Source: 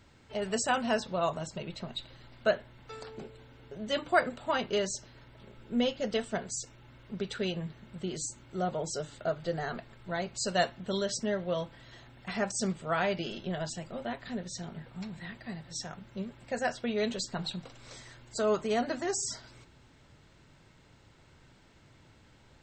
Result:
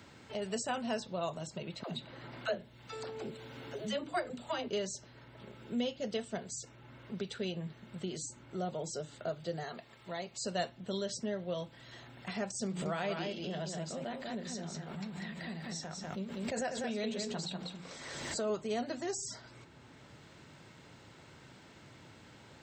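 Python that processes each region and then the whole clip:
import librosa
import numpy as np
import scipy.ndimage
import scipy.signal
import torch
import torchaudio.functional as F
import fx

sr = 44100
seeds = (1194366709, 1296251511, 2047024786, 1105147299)

y = fx.chain(x, sr, fx.dispersion(late='lows', ms=96.0, hz=310.0),
    fx.band_squash(depth_pct=40), at=(1.83, 4.68))
y = fx.chain(y, sr, fx.low_shelf(hz=320.0, db=-9.5),
    fx.notch(hz=1500.0, q=10.0), at=(9.63, 10.44))
y = fx.chain(y, sr, fx.hum_notches(base_hz=60, count=7),
    fx.echo_single(ms=195, db=-5.0),
    fx.pre_swell(db_per_s=48.0), at=(12.66, 18.5))
y = scipy.signal.sosfilt(scipy.signal.butter(2, 80.0, 'highpass', fs=sr, output='sos'), y)
y = fx.dynamic_eq(y, sr, hz=1400.0, q=0.84, threshold_db=-46.0, ratio=4.0, max_db=-5)
y = fx.band_squash(y, sr, depth_pct=40)
y = y * 10.0 ** (-4.0 / 20.0)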